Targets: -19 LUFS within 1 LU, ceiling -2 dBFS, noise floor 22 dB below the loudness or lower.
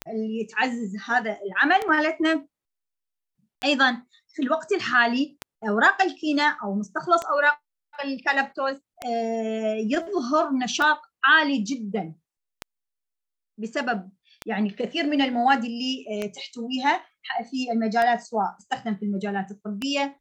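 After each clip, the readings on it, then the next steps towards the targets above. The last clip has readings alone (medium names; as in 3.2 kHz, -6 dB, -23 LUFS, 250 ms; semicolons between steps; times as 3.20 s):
clicks found 12; loudness -24.0 LUFS; peak level -5.5 dBFS; loudness target -19.0 LUFS
-> de-click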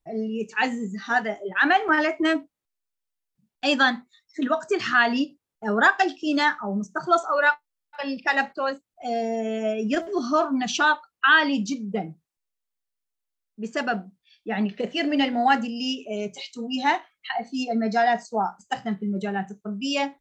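clicks found 0; loudness -24.0 LUFS; peak level -5.5 dBFS; loudness target -19.0 LUFS
-> trim +5 dB; peak limiter -2 dBFS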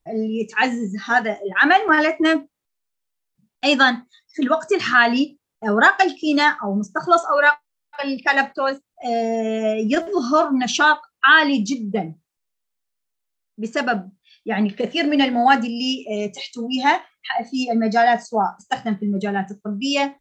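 loudness -19.0 LUFS; peak level -2.0 dBFS; noise floor -78 dBFS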